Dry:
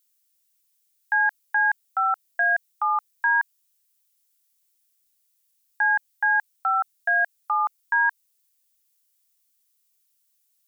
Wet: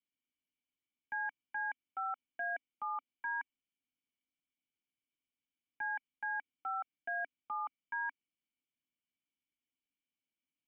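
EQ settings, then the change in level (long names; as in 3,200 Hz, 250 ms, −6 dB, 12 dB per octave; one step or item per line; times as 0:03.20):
dynamic equaliser 1,300 Hz, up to +6 dB, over −35 dBFS, Q 1.5
formant resonators in series i
high-frequency loss of the air 500 metres
+14.0 dB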